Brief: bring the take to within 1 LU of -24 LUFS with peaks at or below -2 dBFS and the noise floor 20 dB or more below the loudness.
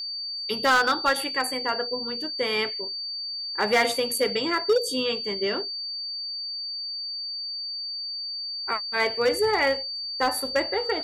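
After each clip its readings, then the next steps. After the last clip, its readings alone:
clipped samples 0.7%; clipping level -15.5 dBFS; steady tone 4.6 kHz; tone level -30 dBFS; loudness -25.5 LUFS; peak level -15.5 dBFS; loudness target -24.0 LUFS
-> clip repair -15.5 dBFS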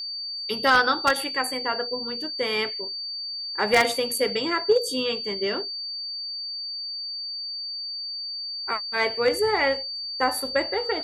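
clipped samples 0.0%; steady tone 4.6 kHz; tone level -30 dBFS
-> band-stop 4.6 kHz, Q 30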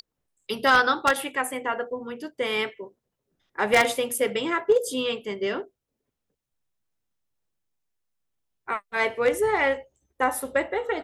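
steady tone not found; loudness -25.0 LUFS; peak level -6.0 dBFS; loudness target -24.0 LUFS
-> trim +1 dB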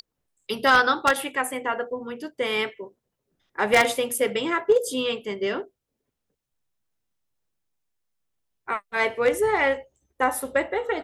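loudness -24.0 LUFS; peak level -5.0 dBFS; noise floor -82 dBFS

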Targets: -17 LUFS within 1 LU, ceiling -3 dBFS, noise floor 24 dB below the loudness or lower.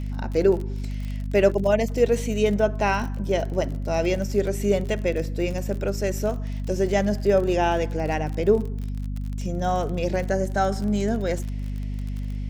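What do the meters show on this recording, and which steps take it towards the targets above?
tick rate 39 per s; hum 50 Hz; highest harmonic 250 Hz; hum level -26 dBFS; loudness -24.5 LUFS; peak level -6.5 dBFS; loudness target -17.0 LUFS
-> de-click; hum notches 50/100/150/200/250 Hz; trim +7.5 dB; peak limiter -3 dBFS

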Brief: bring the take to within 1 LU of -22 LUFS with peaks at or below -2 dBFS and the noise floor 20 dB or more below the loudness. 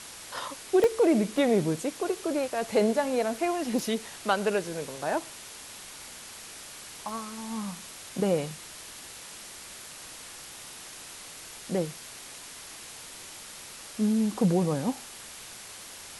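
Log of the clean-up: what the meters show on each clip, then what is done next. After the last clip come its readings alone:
dropouts 4; longest dropout 1.3 ms; noise floor -45 dBFS; noise floor target -49 dBFS; loudness -28.5 LUFS; peak level -12.0 dBFS; loudness target -22.0 LUFS
-> interpolate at 0.84/1.38/3.79/7.09 s, 1.3 ms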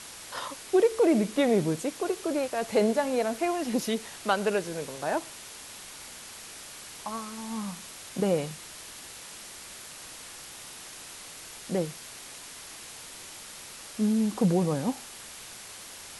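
dropouts 0; noise floor -45 dBFS; noise floor target -49 dBFS
-> noise reduction 6 dB, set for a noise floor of -45 dBFS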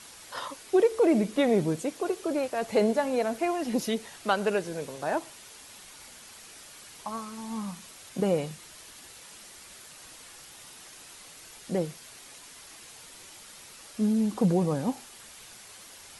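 noise floor -49 dBFS; loudness -28.5 LUFS; peak level -12.0 dBFS; loudness target -22.0 LUFS
-> trim +6.5 dB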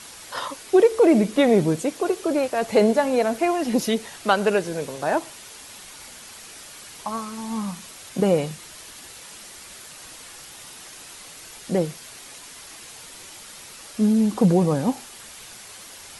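loudness -22.0 LUFS; peak level -5.5 dBFS; noise floor -43 dBFS

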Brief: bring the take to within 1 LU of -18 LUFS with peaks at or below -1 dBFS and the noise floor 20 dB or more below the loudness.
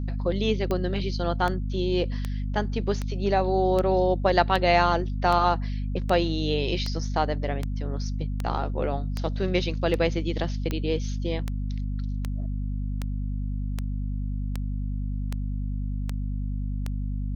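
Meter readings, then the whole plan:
clicks found 22; hum 50 Hz; highest harmonic 250 Hz; hum level -26 dBFS; loudness -27.0 LUFS; peak level -5.5 dBFS; loudness target -18.0 LUFS
-> de-click; hum notches 50/100/150/200/250 Hz; trim +9 dB; peak limiter -1 dBFS

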